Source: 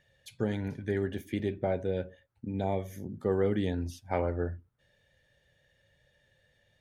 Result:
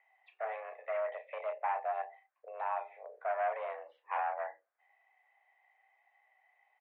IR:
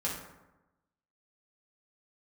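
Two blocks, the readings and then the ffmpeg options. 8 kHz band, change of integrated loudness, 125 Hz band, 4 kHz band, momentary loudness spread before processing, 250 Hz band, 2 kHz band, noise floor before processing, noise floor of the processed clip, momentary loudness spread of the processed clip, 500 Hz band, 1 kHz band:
n/a, -5.0 dB, under -40 dB, under -10 dB, 9 LU, under -40 dB, +0.5 dB, -71 dBFS, -80 dBFS, 11 LU, -6.5 dB, +6.0 dB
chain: -filter_complex "[0:a]asplit=2[a][b];[b]adelay=33,volume=-8.5dB[c];[a][c]amix=inputs=2:normalize=0,asoftclip=type=hard:threshold=-27.5dB,highpass=f=370:t=q:w=0.5412,highpass=f=370:t=q:w=1.307,lowpass=f=2.2k:t=q:w=0.5176,lowpass=f=2.2k:t=q:w=0.7071,lowpass=f=2.2k:t=q:w=1.932,afreqshift=230"

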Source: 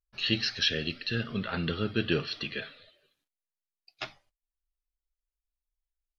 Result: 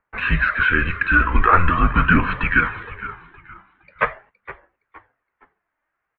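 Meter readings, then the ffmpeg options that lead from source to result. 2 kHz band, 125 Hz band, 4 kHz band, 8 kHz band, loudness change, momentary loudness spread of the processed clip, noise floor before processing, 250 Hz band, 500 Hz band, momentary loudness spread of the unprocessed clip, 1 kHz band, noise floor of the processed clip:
+18.5 dB, +12.0 dB, -6.0 dB, n/a, +12.0 dB, 13 LU, under -85 dBFS, +9.0 dB, +5.5 dB, 14 LU, +25.0 dB, -79 dBFS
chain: -filter_complex "[0:a]equalizer=f=440:t=o:w=2.3:g=-14,acompressor=threshold=-50dB:ratio=1.5,apsyclip=34.5dB,highpass=f=210:t=q:w=0.5412,highpass=f=210:t=q:w=1.307,lowpass=f=2k:t=q:w=0.5176,lowpass=f=2k:t=q:w=0.7071,lowpass=f=2k:t=q:w=1.932,afreqshift=-170,asplit=4[a][b][c][d];[b]adelay=466,afreqshift=-69,volume=-15dB[e];[c]adelay=932,afreqshift=-138,volume=-24.9dB[f];[d]adelay=1398,afreqshift=-207,volume=-34.8dB[g];[a][e][f][g]amix=inputs=4:normalize=0,aphaser=in_gain=1:out_gain=1:delay=3.4:decay=0.31:speed=0.43:type=triangular,volume=-1dB"

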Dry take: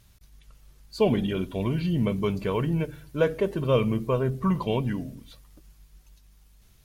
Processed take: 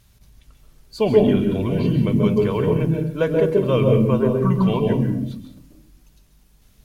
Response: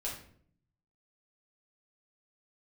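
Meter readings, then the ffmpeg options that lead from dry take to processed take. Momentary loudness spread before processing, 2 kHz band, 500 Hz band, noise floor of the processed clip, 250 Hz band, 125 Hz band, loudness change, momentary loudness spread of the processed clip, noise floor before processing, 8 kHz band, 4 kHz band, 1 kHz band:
7 LU, +3.0 dB, +8.0 dB, -55 dBFS, +8.0 dB, +7.5 dB, +7.5 dB, 6 LU, -58 dBFS, n/a, +3.0 dB, +4.0 dB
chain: -filter_complex "[0:a]asplit=2[a][b];[b]equalizer=f=270:w=0.49:g=13[c];[1:a]atrim=start_sample=2205,adelay=131[d];[c][d]afir=irnorm=-1:irlink=0,volume=-8.5dB[e];[a][e]amix=inputs=2:normalize=0,volume=2dB"

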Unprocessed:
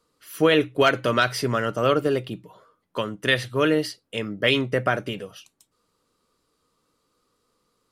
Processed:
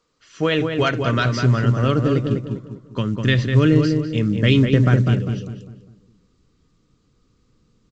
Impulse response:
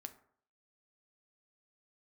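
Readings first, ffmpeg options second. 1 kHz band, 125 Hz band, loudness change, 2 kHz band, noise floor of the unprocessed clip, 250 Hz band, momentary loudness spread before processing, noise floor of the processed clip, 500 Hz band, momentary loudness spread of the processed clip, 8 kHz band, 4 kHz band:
-1.5 dB, +15.0 dB, +4.0 dB, -1.0 dB, -73 dBFS, +8.0 dB, 15 LU, -63 dBFS, -0.5 dB, 12 LU, n/a, -1.0 dB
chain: -filter_complex "[0:a]asplit=2[a][b];[b]adelay=200,lowpass=f=1.8k:p=1,volume=-4.5dB,asplit=2[c][d];[d]adelay=200,lowpass=f=1.8k:p=1,volume=0.39,asplit=2[e][f];[f]adelay=200,lowpass=f=1.8k:p=1,volume=0.39,asplit=2[g][h];[h]adelay=200,lowpass=f=1.8k:p=1,volume=0.39,asplit=2[i][j];[j]adelay=200,lowpass=f=1.8k:p=1,volume=0.39[k];[a][c][e][g][i][k]amix=inputs=6:normalize=0,asubboost=boost=11:cutoff=210,volume=-1dB" -ar 16000 -c:a pcm_alaw

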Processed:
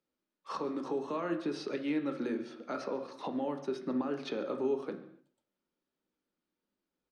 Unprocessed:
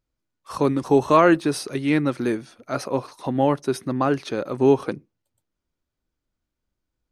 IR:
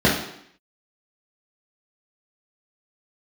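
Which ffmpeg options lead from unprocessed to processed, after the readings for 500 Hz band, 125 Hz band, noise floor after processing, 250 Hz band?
-14.0 dB, -22.0 dB, under -85 dBFS, -13.0 dB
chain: -filter_complex "[0:a]acrossover=split=140|7200[a][b][c];[a]acompressor=threshold=-45dB:ratio=4[d];[b]acompressor=threshold=-29dB:ratio=4[e];[c]acompressor=threshold=-60dB:ratio=4[f];[d][e][f]amix=inputs=3:normalize=0,alimiter=limit=-23dB:level=0:latency=1:release=206,acrossover=split=220 6100:gain=0.0794 1 0.112[g][h][i];[g][h][i]amix=inputs=3:normalize=0,asplit=2[j][k];[k]adelay=139.9,volume=-19dB,highshelf=f=4k:g=-3.15[l];[j][l]amix=inputs=2:normalize=0,asplit=2[m][n];[1:a]atrim=start_sample=2205,afade=t=out:st=0.31:d=0.01,atrim=end_sample=14112,asetrate=38367,aresample=44100[o];[n][o]afir=irnorm=-1:irlink=0,volume=-26dB[p];[m][p]amix=inputs=2:normalize=0,volume=-3.5dB"

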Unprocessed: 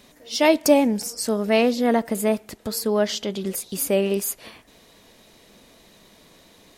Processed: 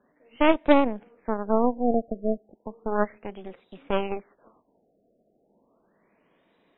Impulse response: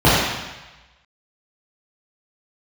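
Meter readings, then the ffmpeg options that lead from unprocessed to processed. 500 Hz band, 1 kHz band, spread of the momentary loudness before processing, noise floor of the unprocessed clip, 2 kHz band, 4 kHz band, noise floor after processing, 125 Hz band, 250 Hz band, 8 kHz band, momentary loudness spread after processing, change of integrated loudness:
-5.0 dB, 0.0 dB, 10 LU, -54 dBFS, -4.5 dB, -11.5 dB, -68 dBFS, -7.5 dB, -4.0 dB, under -40 dB, 19 LU, -3.5 dB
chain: -filter_complex "[0:a]acrossover=split=160 3000:gain=0.224 1 0.0708[a][b][c];[a][b][c]amix=inputs=3:normalize=0,aeval=exprs='0.596*(cos(1*acos(clip(val(0)/0.596,-1,1)))-cos(1*PI/2))+0.0944*(cos(3*acos(clip(val(0)/0.596,-1,1)))-cos(3*PI/2))+0.0668*(cos(6*acos(clip(val(0)/0.596,-1,1)))-cos(6*PI/2))+0.0188*(cos(7*acos(clip(val(0)/0.596,-1,1)))-cos(7*PI/2))':c=same,afftfilt=real='re*lt(b*sr/1024,730*pow(4000/730,0.5+0.5*sin(2*PI*0.34*pts/sr)))':imag='im*lt(b*sr/1024,730*pow(4000/730,0.5+0.5*sin(2*PI*0.34*pts/sr)))':win_size=1024:overlap=0.75"

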